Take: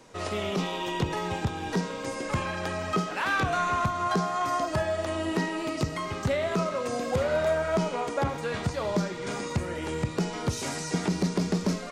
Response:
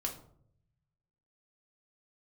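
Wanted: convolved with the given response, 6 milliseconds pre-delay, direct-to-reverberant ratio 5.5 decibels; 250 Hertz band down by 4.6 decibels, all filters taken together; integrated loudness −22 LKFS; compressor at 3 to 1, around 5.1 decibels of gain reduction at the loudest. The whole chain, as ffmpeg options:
-filter_complex "[0:a]equalizer=frequency=250:width_type=o:gain=-7.5,acompressor=threshold=-30dB:ratio=3,asplit=2[link_01][link_02];[1:a]atrim=start_sample=2205,adelay=6[link_03];[link_02][link_03]afir=irnorm=-1:irlink=0,volume=-7dB[link_04];[link_01][link_04]amix=inputs=2:normalize=0,volume=10dB"

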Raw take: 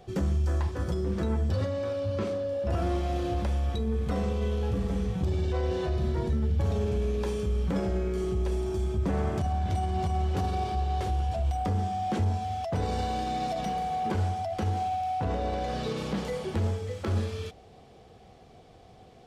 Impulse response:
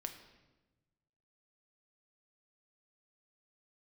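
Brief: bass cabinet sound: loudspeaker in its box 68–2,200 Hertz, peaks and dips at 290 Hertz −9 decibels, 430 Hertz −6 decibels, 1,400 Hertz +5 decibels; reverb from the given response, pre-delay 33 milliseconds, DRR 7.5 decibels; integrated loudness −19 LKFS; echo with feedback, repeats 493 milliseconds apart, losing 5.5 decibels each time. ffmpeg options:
-filter_complex "[0:a]aecho=1:1:493|986|1479|1972|2465|2958|3451:0.531|0.281|0.149|0.079|0.0419|0.0222|0.0118,asplit=2[link_01][link_02];[1:a]atrim=start_sample=2205,adelay=33[link_03];[link_02][link_03]afir=irnorm=-1:irlink=0,volume=-5dB[link_04];[link_01][link_04]amix=inputs=2:normalize=0,highpass=frequency=68:width=0.5412,highpass=frequency=68:width=1.3066,equalizer=frequency=290:width_type=q:width=4:gain=-9,equalizer=frequency=430:width_type=q:width=4:gain=-6,equalizer=frequency=1400:width_type=q:width=4:gain=5,lowpass=frequency=2200:width=0.5412,lowpass=frequency=2200:width=1.3066,volume=11dB"

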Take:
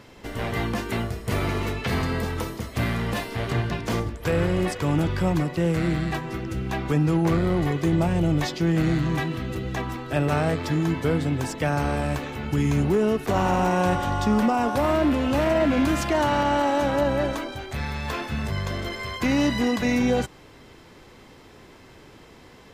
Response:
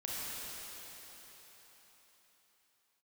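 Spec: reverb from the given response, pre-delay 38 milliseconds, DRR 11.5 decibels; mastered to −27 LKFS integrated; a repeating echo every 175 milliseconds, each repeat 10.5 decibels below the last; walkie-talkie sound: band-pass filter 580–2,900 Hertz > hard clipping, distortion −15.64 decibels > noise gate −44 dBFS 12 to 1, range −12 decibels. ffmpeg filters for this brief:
-filter_complex "[0:a]aecho=1:1:175|350|525:0.299|0.0896|0.0269,asplit=2[link_01][link_02];[1:a]atrim=start_sample=2205,adelay=38[link_03];[link_02][link_03]afir=irnorm=-1:irlink=0,volume=-15dB[link_04];[link_01][link_04]amix=inputs=2:normalize=0,highpass=580,lowpass=2900,asoftclip=type=hard:threshold=-22dB,agate=range=-12dB:threshold=-44dB:ratio=12,volume=3.5dB"

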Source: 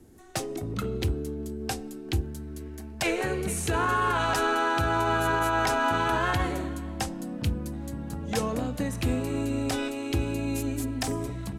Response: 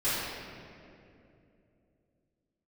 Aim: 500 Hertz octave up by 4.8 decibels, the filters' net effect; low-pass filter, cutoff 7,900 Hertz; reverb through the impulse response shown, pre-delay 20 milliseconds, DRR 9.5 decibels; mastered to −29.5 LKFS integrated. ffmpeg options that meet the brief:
-filter_complex "[0:a]lowpass=7900,equalizer=frequency=500:width_type=o:gain=6.5,asplit=2[link_01][link_02];[1:a]atrim=start_sample=2205,adelay=20[link_03];[link_02][link_03]afir=irnorm=-1:irlink=0,volume=-20.5dB[link_04];[link_01][link_04]amix=inputs=2:normalize=0,volume=-3.5dB"

